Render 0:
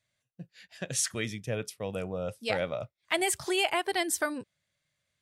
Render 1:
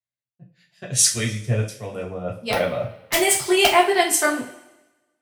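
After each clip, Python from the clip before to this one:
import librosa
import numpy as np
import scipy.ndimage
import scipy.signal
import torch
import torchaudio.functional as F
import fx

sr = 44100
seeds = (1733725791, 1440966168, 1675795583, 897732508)

y = (np.mod(10.0 ** (15.0 / 20.0) * x + 1.0, 2.0) - 1.0) / 10.0 ** (15.0 / 20.0)
y = fx.rev_double_slope(y, sr, seeds[0], early_s=0.37, late_s=2.3, knee_db=-18, drr_db=-3.0)
y = fx.band_widen(y, sr, depth_pct=70)
y = F.gain(torch.from_numpy(y), 4.5).numpy()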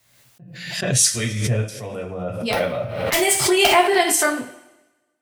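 y = fx.pre_swell(x, sr, db_per_s=51.0)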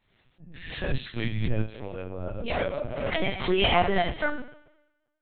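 y = fx.highpass(x, sr, hz=61.0, slope=6)
y = fx.low_shelf(y, sr, hz=120.0, db=10.5)
y = fx.lpc_vocoder(y, sr, seeds[1], excitation='pitch_kept', order=10)
y = F.gain(torch.from_numpy(y), -7.0).numpy()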